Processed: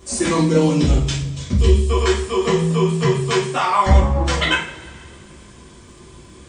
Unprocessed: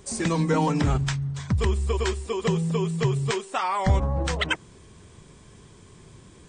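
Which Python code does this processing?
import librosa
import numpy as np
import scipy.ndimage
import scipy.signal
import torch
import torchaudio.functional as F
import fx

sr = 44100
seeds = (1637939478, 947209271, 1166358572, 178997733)

y = fx.band_shelf(x, sr, hz=1200.0, db=-11.0, octaves=1.7, at=(0.37, 1.9))
y = fx.rev_double_slope(y, sr, seeds[0], early_s=0.43, late_s=2.4, knee_db=-21, drr_db=-8.5)
y = fx.dmg_crackle(y, sr, seeds[1], per_s=29.0, level_db=-51.0)
y = y * 10.0 ** (-1.0 / 20.0)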